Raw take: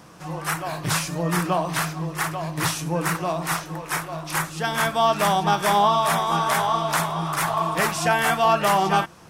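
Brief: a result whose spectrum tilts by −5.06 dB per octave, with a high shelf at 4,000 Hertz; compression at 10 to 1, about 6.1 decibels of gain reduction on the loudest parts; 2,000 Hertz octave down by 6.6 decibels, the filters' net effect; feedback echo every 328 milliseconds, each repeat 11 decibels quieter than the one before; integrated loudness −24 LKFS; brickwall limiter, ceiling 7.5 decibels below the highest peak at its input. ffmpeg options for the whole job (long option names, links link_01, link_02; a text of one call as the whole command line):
ffmpeg -i in.wav -af "equalizer=frequency=2000:width_type=o:gain=-7.5,highshelf=frequency=4000:gain=-7,acompressor=threshold=-22dB:ratio=10,alimiter=limit=-21.5dB:level=0:latency=1,aecho=1:1:328|656|984:0.282|0.0789|0.0221,volume=6.5dB" out.wav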